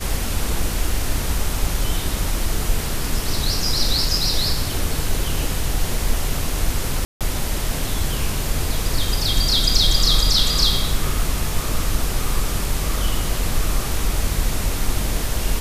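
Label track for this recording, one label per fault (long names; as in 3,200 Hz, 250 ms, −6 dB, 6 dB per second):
7.050000	7.210000	drop-out 157 ms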